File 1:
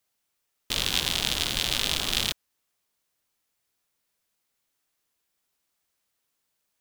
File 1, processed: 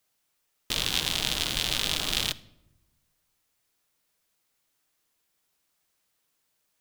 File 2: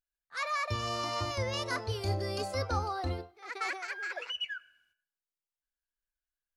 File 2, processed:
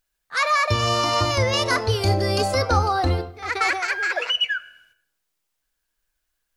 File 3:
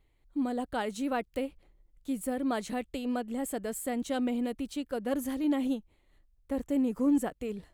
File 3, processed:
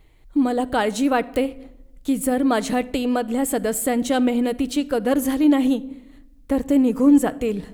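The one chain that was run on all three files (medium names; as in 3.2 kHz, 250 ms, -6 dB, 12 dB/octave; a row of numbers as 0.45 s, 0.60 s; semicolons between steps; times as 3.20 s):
in parallel at -1.5 dB: compression, threshold -37 dBFS; on the sum: simulated room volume 3200 m³, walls furnished, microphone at 0.53 m; peak normalisation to -6 dBFS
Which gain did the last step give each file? -2.5 dB, +10.0 dB, +9.5 dB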